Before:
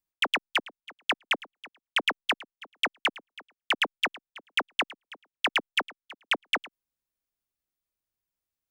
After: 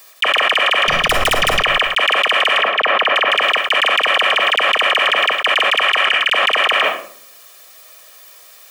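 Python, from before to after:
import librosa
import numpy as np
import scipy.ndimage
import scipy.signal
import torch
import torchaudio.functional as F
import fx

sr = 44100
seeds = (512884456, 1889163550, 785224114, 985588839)

y = scipy.signal.sosfilt(scipy.signal.butter(2, 550.0, 'highpass', fs=sr, output='sos'), x)
y = fx.high_shelf(y, sr, hz=5600.0, db=-3.5)
y = y + 0.6 * np.pad(y, (int(1.7 * sr / 1000.0), 0))[:len(y)]
y = fx.tube_stage(y, sr, drive_db=34.0, bias=0.65, at=(0.75, 1.53))
y = fx.spacing_loss(y, sr, db_at_10k=30, at=(2.52, 3.11))
y = fx.level_steps(y, sr, step_db=21, at=(5.8, 6.24), fade=0.02)
y = y + 10.0 ** (-5.5 / 20.0) * np.pad(y, (int(158 * sr / 1000.0), 0))[:len(y)]
y = fx.room_shoebox(y, sr, seeds[0], volume_m3=690.0, walls='furnished', distance_m=0.54)
y = fx.env_flatten(y, sr, amount_pct=100)
y = y * 10.0 ** (6.5 / 20.0)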